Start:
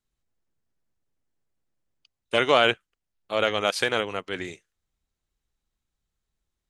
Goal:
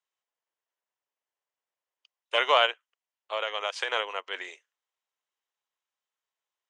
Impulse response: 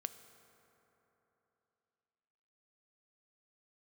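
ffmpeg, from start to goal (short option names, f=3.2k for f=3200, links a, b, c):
-filter_complex "[0:a]asplit=3[a][b][c];[a]afade=t=out:st=2.65:d=0.02[d];[b]acompressor=threshold=-23dB:ratio=6,afade=t=in:st=2.65:d=0.02,afade=t=out:st=3.87:d=0.02[e];[c]afade=t=in:st=3.87:d=0.02[f];[d][e][f]amix=inputs=3:normalize=0,highpass=f=490:w=0.5412,highpass=f=490:w=1.3066,equalizer=f=1k:t=q:w=4:g=7,equalizer=f=1.9k:t=q:w=4:g=3,equalizer=f=3k:t=q:w=4:g=5,equalizer=f=4.3k:t=q:w=4:g=-5,lowpass=f=7.5k:w=0.5412,lowpass=f=7.5k:w=1.3066,volume=-3.5dB"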